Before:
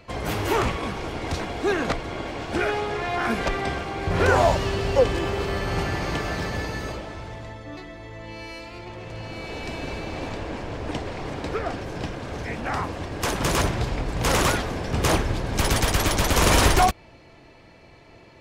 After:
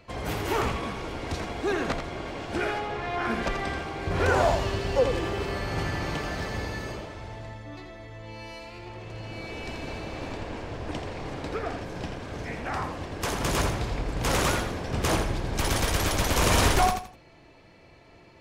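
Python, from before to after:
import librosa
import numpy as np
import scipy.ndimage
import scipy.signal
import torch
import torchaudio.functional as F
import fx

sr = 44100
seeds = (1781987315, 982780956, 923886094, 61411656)

p1 = fx.high_shelf(x, sr, hz=fx.line((2.78, 5100.0), (3.42, 9300.0)), db=-9.5, at=(2.78, 3.42), fade=0.02)
p2 = p1 + fx.echo_feedback(p1, sr, ms=83, feedback_pct=27, wet_db=-7.0, dry=0)
y = F.gain(torch.from_numpy(p2), -4.5).numpy()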